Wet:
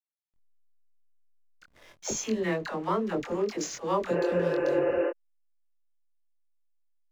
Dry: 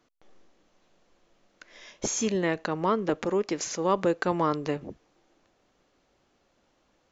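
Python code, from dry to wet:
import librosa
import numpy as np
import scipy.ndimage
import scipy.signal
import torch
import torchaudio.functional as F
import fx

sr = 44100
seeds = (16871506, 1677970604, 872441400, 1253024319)

y = fx.dispersion(x, sr, late='lows', ms=76.0, hz=620.0)
y = fx.backlash(y, sr, play_db=-42.5)
y = fx.spec_repair(y, sr, seeds[0], start_s=4.15, length_s=0.92, low_hz=280.0, high_hz=3000.0, source='before')
y = fx.doubler(y, sr, ms=23.0, db=-3.0)
y = y * librosa.db_to_amplitude(-4.0)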